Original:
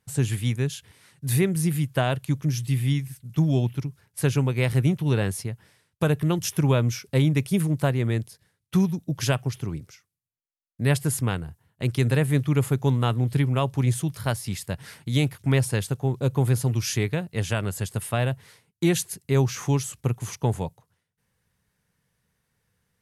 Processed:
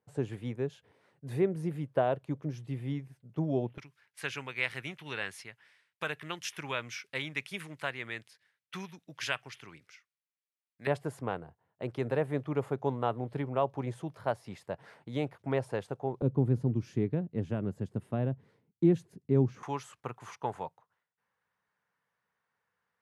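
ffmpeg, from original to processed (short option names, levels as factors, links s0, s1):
-af "asetnsamples=n=441:p=0,asendcmd='3.78 bandpass f 2100;10.87 bandpass f 660;16.22 bandpass f 260;19.63 bandpass f 1100',bandpass=f=530:t=q:w=1.3:csg=0"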